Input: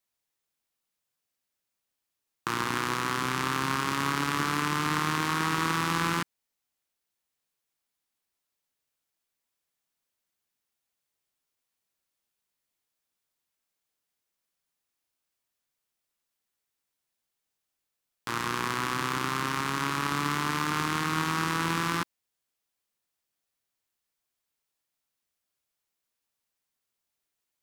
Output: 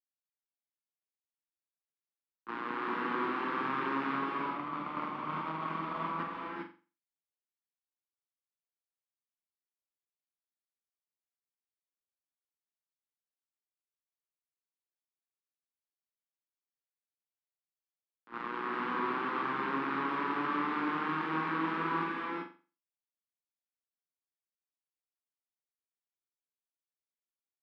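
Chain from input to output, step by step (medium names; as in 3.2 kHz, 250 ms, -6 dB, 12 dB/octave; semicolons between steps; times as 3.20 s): 4.12–6.19 s: comb filter that takes the minimum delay 0.89 ms; high-pass 220 Hz 24 dB/octave; gate -30 dBFS, range -21 dB; treble shelf 4.1 kHz -8 dB; peak limiter -23.5 dBFS, peak gain reduction 8.5 dB; distance through air 430 m; flutter echo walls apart 7.5 m, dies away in 0.35 s; gated-style reverb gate 430 ms rising, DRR -1.5 dB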